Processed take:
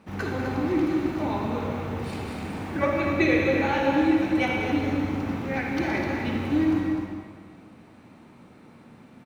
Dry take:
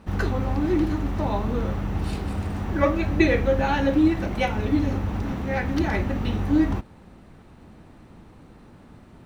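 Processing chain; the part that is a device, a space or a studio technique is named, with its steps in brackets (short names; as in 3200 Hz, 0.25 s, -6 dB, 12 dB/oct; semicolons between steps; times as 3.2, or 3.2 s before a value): stadium PA (HPF 130 Hz 12 dB/oct; bell 2300 Hz +6 dB 0.24 oct; loudspeakers at several distances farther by 66 m -10 dB, 87 m -8 dB; reverb RT60 1.8 s, pre-delay 45 ms, DRR 1 dB); gain -4 dB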